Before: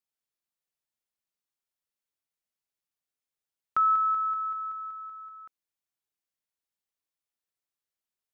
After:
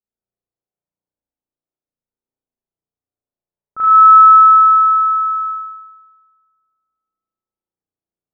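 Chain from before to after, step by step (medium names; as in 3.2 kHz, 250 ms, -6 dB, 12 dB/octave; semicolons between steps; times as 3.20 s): spring tank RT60 2 s, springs 34 ms, chirp 40 ms, DRR -8.5 dB; level-controlled noise filter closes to 600 Hz, open at -9.5 dBFS; trim +1 dB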